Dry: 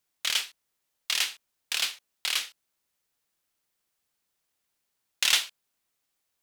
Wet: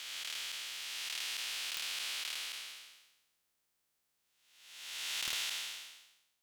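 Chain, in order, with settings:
spectrum smeared in time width 681 ms
wrap-around overflow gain 25 dB

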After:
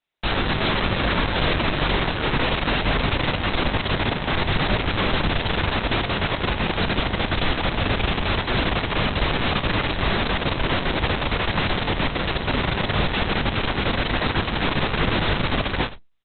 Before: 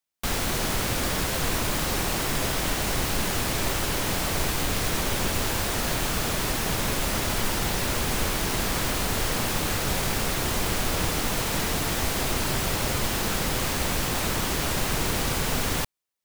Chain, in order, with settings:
reverse bouncing-ball delay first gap 20 ms, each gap 1.1×, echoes 5
level +4 dB
Opus 6 kbit/s 48,000 Hz

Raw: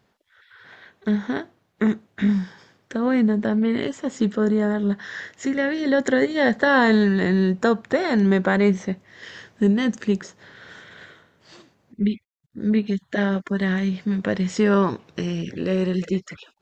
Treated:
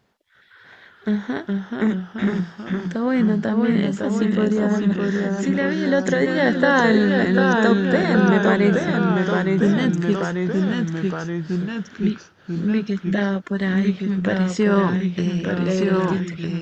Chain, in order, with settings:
delay with pitch and tempo change per echo 351 ms, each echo −1 semitone, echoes 3

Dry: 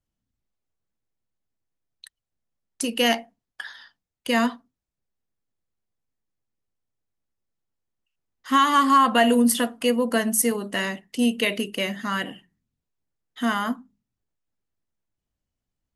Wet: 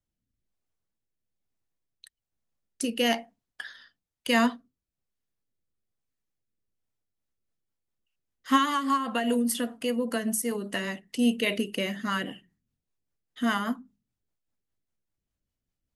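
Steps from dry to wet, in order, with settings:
0:08.65–0:11.07: downward compressor 2 to 1, threshold −26 dBFS, peak gain reduction 7.5 dB
rotating-speaker cabinet horn 1.1 Hz, later 5 Hz, at 0:06.65

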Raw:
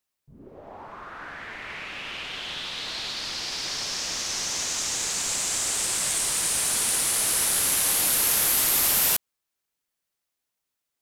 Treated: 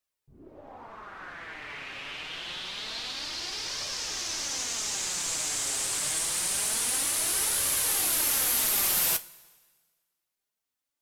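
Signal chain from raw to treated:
flanger 0.26 Hz, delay 1.6 ms, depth 5.9 ms, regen +51%
coupled-rooms reverb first 0.21 s, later 1.5 s, from −18 dB, DRR 10 dB

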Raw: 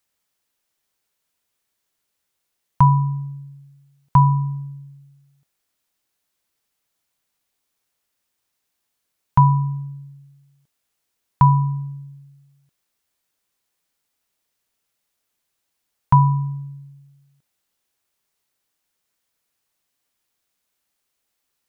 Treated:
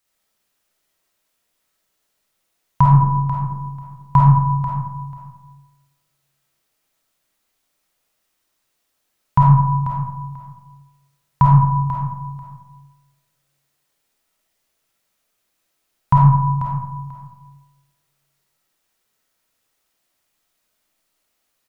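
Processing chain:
0:02.95–0:03.38: downward expander −24 dBFS
repeating echo 490 ms, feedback 18%, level −10.5 dB
comb and all-pass reverb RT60 1 s, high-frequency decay 0.4×, pre-delay 10 ms, DRR −4.5 dB

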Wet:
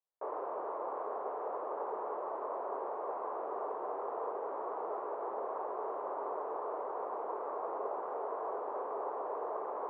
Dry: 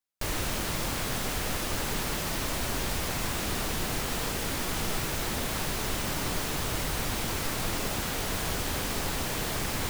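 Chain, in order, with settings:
elliptic band-pass filter 410–1,100 Hz, stop band 80 dB
level +1 dB

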